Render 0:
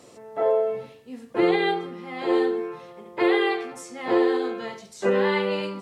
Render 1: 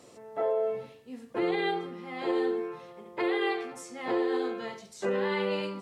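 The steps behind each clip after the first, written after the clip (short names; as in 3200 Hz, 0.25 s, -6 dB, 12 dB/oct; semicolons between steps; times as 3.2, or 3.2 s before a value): limiter -16 dBFS, peak gain reduction 5 dB; gain -4 dB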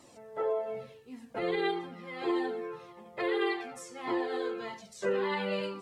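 cascading flanger falling 1.7 Hz; gain +3 dB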